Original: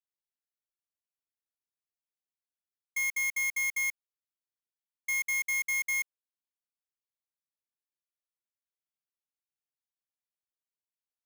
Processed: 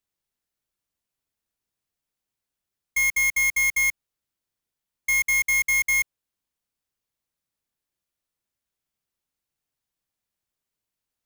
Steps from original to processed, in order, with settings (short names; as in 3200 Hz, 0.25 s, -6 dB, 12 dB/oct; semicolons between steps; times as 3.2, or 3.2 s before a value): low shelf 240 Hz +9.5 dB; gain +8.5 dB